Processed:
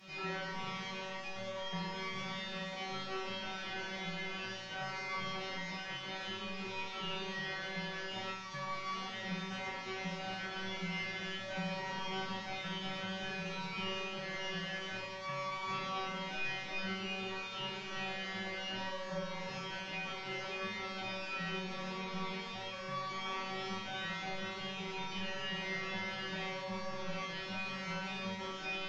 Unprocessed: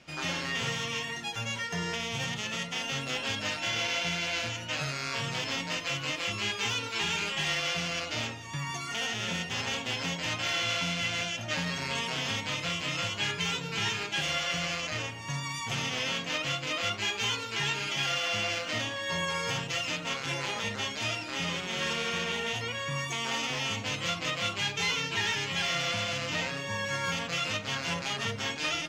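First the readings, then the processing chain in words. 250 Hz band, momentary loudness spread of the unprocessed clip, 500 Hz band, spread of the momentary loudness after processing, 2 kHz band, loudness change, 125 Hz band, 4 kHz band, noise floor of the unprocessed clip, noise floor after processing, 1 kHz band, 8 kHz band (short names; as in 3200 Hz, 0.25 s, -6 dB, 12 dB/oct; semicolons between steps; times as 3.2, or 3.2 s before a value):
-5.0 dB, 4 LU, -6.0 dB, 3 LU, -9.0 dB, -9.0 dB, -9.5 dB, -11.5 dB, -39 dBFS, -44 dBFS, -5.0 dB, -18.0 dB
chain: delta modulation 32 kbps, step -46.5 dBFS; resonator 190 Hz, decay 0.81 s, harmonics all, mix 100%; gain +15.5 dB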